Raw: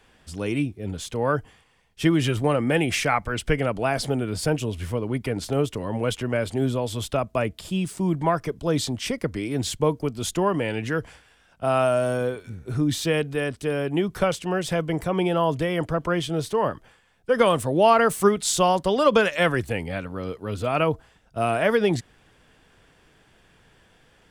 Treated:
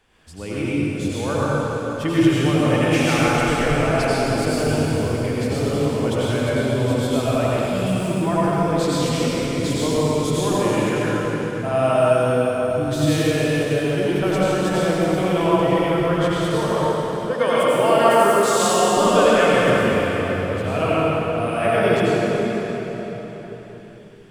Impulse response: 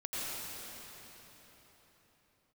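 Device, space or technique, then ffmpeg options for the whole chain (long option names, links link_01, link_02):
cathedral: -filter_complex "[1:a]atrim=start_sample=2205[link_01];[0:a][link_01]afir=irnorm=-1:irlink=0,asettb=1/sr,asplit=3[link_02][link_03][link_04];[link_02]atrim=end=17.334[link_05];[link_03]atrim=start=17.33:end=18.97,asetpts=PTS-STARTPTS,afade=type=in:duration=0.004:curve=qsin,afade=type=out:start_time=1.636:duration=0.004:curve=qsin,highpass=frequency=250:poles=1[link_06];[link_04]atrim=start=18.966[link_07];[link_05][link_06]acrossfade=duration=0.004:curve1=hsin:curve2=qsin[link_08];[link_08][link_07]acrossfade=duration=0.004:curve1=qsin:curve2=hsin"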